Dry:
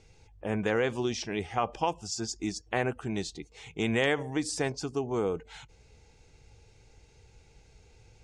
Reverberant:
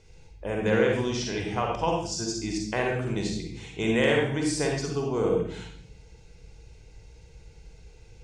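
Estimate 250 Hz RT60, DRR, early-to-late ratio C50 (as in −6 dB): 1.0 s, 0.0 dB, 1.5 dB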